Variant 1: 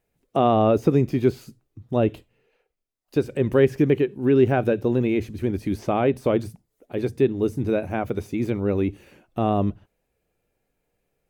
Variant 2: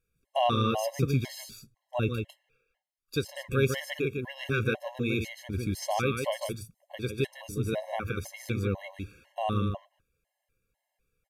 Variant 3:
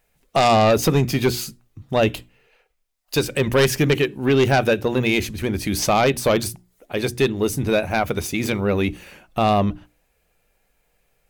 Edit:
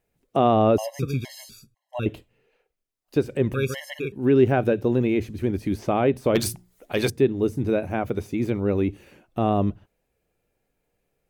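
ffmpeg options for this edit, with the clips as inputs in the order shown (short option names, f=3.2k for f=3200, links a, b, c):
-filter_complex "[1:a]asplit=2[a][b];[0:a]asplit=4[c][d][e][f];[c]atrim=end=0.782[g];[a]atrim=start=0.778:end=2.062[h];[d]atrim=start=2.058:end=3.542[i];[b]atrim=start=3.538:end=4.122[j];[e]atrim=start=4.118:end=6.352[k];[2:a]atrim=start=6.348:end=7.102[l];[f]atrim=start=7.098[m];[g][h]acrossfade=d=0.004:c1=hsin:c2=hsin[n];[n][i]acrossfade=d=0.004:c1=hsin:c2=hsin[o];[o][j]acrossfade=d=0.004:c1=hsin:c2=hsin[p];[p][k]acrossfade=d=0.004:c1=hsin:c2=hsin[q];[q][l]acrossfade=d=0.004:c1=hsin:c2=hsin[r];[r][m]acrossfade=d=0.004:c1=hsin:c2=hsin"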